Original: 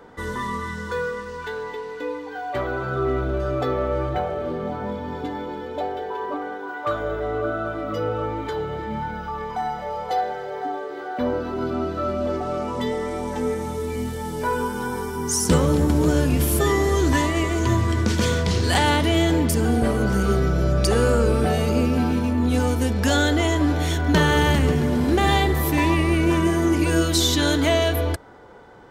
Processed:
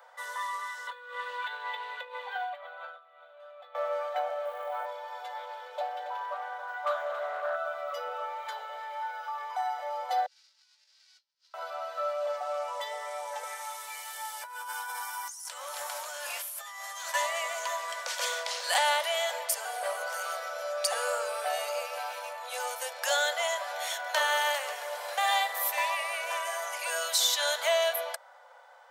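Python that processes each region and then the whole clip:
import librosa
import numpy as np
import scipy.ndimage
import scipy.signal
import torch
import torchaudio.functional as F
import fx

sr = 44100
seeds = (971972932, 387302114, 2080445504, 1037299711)

y = fx.chain(x, sr, fx.high_shelf_res(hz=4400.0, db=-7.0, q=3.0),
    fx.over_compress(threshold_db=-31.0, ratio=-0.5), at=(0.87, 3.75))
y = fx.chain(y, sr, fx.lowpass(hz=3600.0, slope=24),
    fx.quant_companded(bits=8),
    fx.env_flatten(amount_pct=100), at=(4.45, 4.86))
y = fx.chain(y, sr, fx.echo_single(ms=276, db=-10.5),
    fx.doppler_dist(depth_ms=0.19), at=(5.36, 7.56))
y = fx.chain(y, sr, fx.lower_of_two(delay_ms=2.1),
    fx.over_compress(threshold_db=-33.0, ratio=-0.5),
    fx.ladder_bandpass(hz=5400.0, resonance_pct=60), at=(10.26, 11.54))
y = fx.chain(y, sr, fx.highpass(hz=900.0, slope=12),
    fx.over_compress(threshold_db=-34.0, ratio=-1.0), at=(13.43, 17.14))
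y = scipy.signal.sosfilt(scipy.signal.butter(16, 530.0, 'highpass', fs=sr, output='sos'), y)
y = fx.high_shelf(y, sr, hz=9000.0, db=6.5)
y = F.gain(torch.from_numpy(y), -5.0).numpy()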